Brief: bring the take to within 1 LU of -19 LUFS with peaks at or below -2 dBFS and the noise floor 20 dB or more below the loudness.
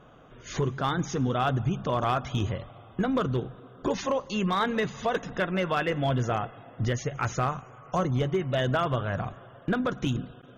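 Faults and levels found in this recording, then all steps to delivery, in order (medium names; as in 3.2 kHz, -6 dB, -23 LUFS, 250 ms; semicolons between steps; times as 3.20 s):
clipped samples 0.5%; clipping level -18.5 dBFS; loudness -29.0 LUFS; peak level -18.5 dBFS; loudness target -19.0 LUFS
-> clip repair -18.5 dBFS; trim +10 dB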